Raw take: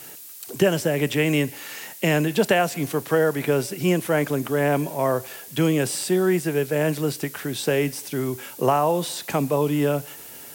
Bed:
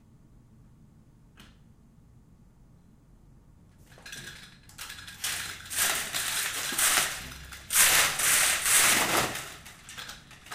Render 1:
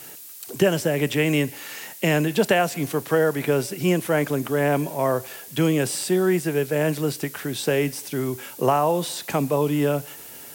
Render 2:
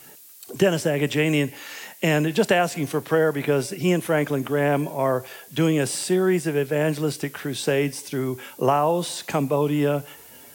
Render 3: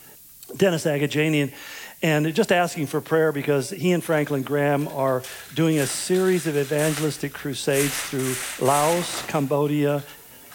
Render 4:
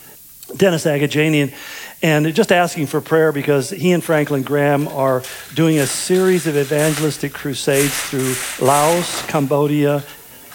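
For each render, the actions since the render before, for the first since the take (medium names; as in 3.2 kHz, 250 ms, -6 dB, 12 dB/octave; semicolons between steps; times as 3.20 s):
no audible change
noise print and reduce 6 dB
add bed -7 dB
trim +6 dB; peak limiter -1 dBFS, peak gain reduction 1 dB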